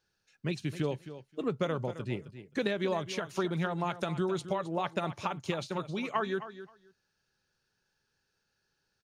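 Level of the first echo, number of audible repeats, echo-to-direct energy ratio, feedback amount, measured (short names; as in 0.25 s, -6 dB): -13.0 dB, 2, -13.0 dB, 15%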